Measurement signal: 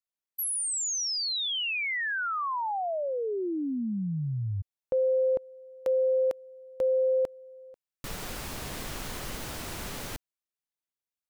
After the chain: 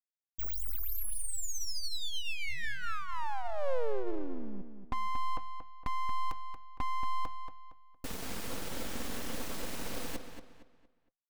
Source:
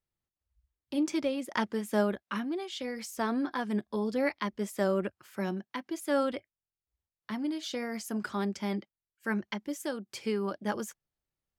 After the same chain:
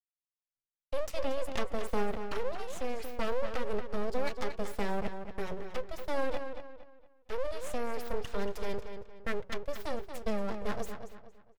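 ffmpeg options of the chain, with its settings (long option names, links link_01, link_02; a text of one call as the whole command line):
ffmpeg -i in.wav -filter_complex "[0:a]equalizer=frequency=260:width_type=o:width=0.44:gain=13.5,aecho=1:1:4.5:0.38,bandreject=frequency=187.4:width_type=h:width=4,bandreject=frequency=374.8:width_type=h:width=4,bandreject=frequency=562.2:width_type=h:width=4,bandreject=frequency=749.6:width_type=h:width=4,bandreject=frequency=937:width_type=h:width=4,bandreject=frequency=1124.4:width_type=h:width=4,agate=range=-33dB:threshold=-38dB:ratio=3:release=132:detection=rms,acompressor=threshold=-26dB:ratio=6:attack=70:release=23:knee=6,aeval=exprs='abs(val(0))':channel_layout=same,asplit=2[link_01][link_02];[link_02]adelay=231,lowpass=frequency=4500:poles=1,volume=-8dB,asplit=2[link_03][link_04];[link_04]adelay=231,lowpass=frequency=4500:poles=1,volume=0.35,asplit=2[link_05][link_06];[link_06]adelay=231,lowpass=frequency=4500:poles=1,volume=0.35,asplit=2[link_07][link_08];[link_08]adelay=231,lowpass=frequency=4500:poles=1,volume=0.35[link_09];[link_03][link_05][link_07][link_09]amix=inputs=4:normalize=0[link_10];[link_01][link_10]amix=inputs=2:normalize=0,volume=-3dB" out.wav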